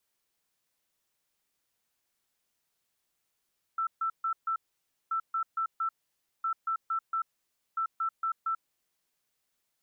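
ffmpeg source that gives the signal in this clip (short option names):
-f lavfi -i "aevalsrc='0.0447*sin(2*PI*1330*t)*clip(min(mod(mod(t,1.33),0.23),0.09-mod(mod(t,1.33),0.23))/0.005,0,1)*lt(mod(t,1.33),0.92)':d=5.32:s=44100"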